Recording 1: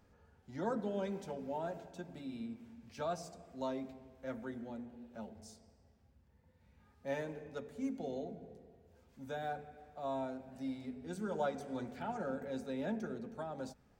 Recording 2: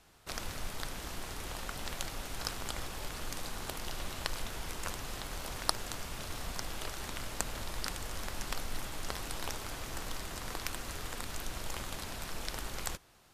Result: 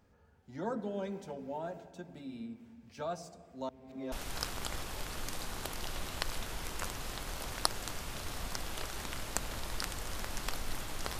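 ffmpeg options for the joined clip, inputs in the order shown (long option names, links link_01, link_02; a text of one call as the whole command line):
ffmpeg -i cue0.wav -i cue1.wav -filter_complex "[0:a]apad=whole_dur=11.19,atrim=end=11.19,asplit=2[link_01][link_02];[link_01]atrim=end=3.692[link_03];[link_02]atrim=start=3.688:end=4.122,asetpts=PTS-STARTPTS,areverse[link_04];[1:a]atrim=start=2.158:end=9.23[link_05];[link_03][link_04]acrossfade=duration=0.004:curve1=hsin:curve2=hsin[link_06];[link_06][link_05]acrossfade=duration=0.004:curve1=hsin:curve2=hsin" out.wav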